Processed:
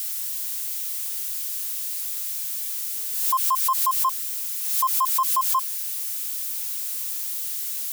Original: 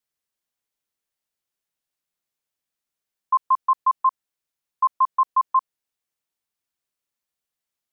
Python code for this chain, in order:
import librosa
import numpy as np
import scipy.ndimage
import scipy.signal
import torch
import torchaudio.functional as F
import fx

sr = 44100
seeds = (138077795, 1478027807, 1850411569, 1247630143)

y = x + 0.5 * 10.0 ** (-21.0 / 20.0) * np.diff(np.sign(x), prepend=np.sign(x[:1]))
y = fx.pre_swell(y, sr, db_per_s=41.0)
y = F.gain(torch.from_numpy(y), -4.0).numpy()